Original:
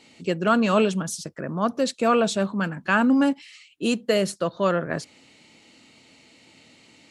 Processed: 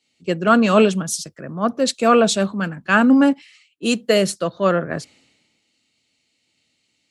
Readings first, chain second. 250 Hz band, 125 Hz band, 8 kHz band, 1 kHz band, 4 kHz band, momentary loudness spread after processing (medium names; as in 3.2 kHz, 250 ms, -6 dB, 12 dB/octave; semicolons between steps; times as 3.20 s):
+5.0 dB, +3.5 dB, +7.5 dB, +5.0 dB, +6.0 dB, 12 LU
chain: peaking EQ 940 Hz -4.5 dB 0.2 oct; three bands expanded up and down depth 70%; trim +4.5 dB